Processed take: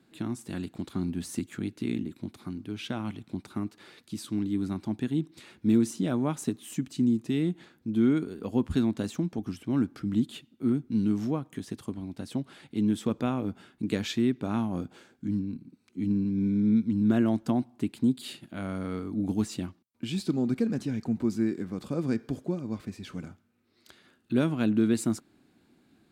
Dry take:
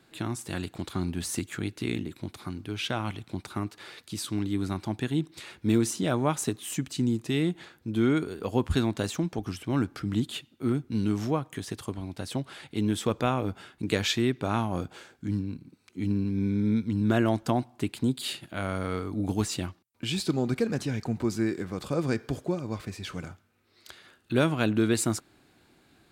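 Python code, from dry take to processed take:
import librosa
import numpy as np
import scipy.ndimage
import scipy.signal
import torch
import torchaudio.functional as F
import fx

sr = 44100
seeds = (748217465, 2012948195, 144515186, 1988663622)

y = fx.peak_eq(x, sr, hz=230.0, db=11.0, octaves=1.2)
y = y * 10.0 ** (-7.5 / 20.0)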